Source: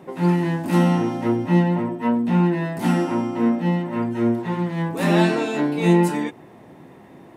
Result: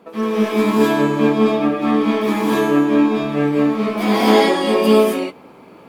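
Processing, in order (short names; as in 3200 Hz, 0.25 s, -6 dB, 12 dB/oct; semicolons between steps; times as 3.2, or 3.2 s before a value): varispeed +25%; in parallel at -6 dB: crossover distortion -32.5 dBFS; on the sum: non-linear reverb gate 0.29 s rising, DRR -7 dB; gain -5 dB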